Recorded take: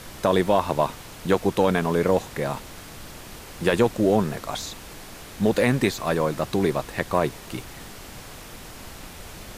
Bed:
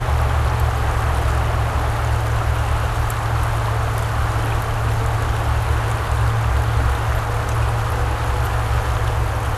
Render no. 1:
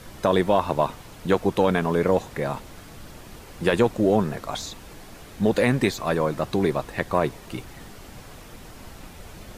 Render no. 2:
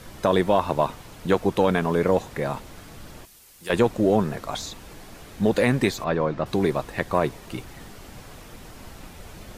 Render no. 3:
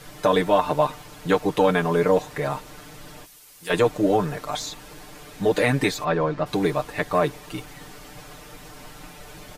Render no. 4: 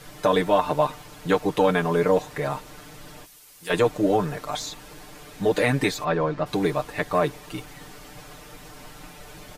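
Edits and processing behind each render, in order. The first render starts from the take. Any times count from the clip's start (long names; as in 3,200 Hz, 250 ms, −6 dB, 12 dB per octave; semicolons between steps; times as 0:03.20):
broadband denoise 6 dB, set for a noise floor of −42 dBFS
0:03.25–0:03.70: first-order pre-emphasis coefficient 0.9; 0:06.04–0:06.46: high-frequency loss of the air 170 metres
low-shelf EQ 270 Hz −5.5 dB; comb filter 6.7 ms, depth 87%
level −1 dB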